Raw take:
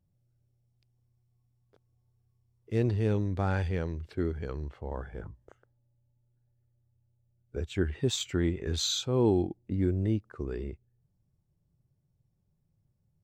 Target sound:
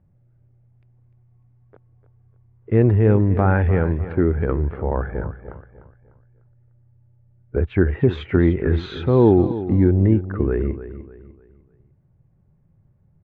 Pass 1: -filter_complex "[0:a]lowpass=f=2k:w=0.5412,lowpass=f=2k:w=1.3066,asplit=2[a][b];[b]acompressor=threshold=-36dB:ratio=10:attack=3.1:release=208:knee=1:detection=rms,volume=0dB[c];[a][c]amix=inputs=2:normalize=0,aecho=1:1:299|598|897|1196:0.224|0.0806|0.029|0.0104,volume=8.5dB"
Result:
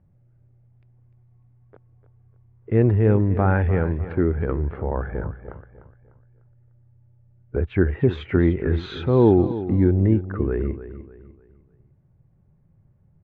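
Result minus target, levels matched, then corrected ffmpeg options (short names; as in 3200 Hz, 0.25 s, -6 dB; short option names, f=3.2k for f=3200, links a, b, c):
compressor: peak gain reduction +8.5 dB
-filter_complex "[0:a]lowpass=f=2k:w=0.5412,lowpass=f=2k:w=1.3066,asplit=2[a][b];[b]acompressor=threshold=-26.5dB:ratio=10:attack=3.1:release=208:knee=1:detection=rms,volume=0dB[c];[a][c]amix=inputs=2:normalize=0,aecho=1:1:299|598|897|1196:0.224|0.0806|0.029|0.0104,volume=8.5dB"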